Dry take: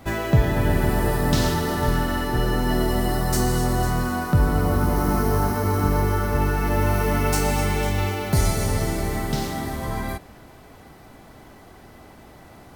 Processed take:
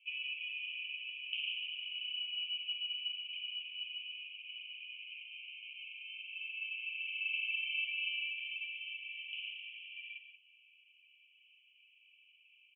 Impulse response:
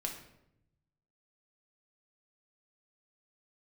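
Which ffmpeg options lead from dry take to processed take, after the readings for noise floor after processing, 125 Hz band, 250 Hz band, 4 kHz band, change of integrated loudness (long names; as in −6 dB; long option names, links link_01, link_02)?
−67 dBFS, below −40 dB, below −40 dB, −2.5 dB, −16.5 dB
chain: -filter_complex "[0:a]asplit=2[link_01][link_02];[link_02]acrusher=bits=4:mix=0:aa=0.5,volume=-5.5dB[link_03];[link_01][link_03]amix=inputs=2:normalize=0,asoftclip=type=tanh:threshold=-11.5dB,asuperpass=centerf=2700:order=12:qfactor=3.6,aecho=1:1:145.8|183.7:0.316|0.282"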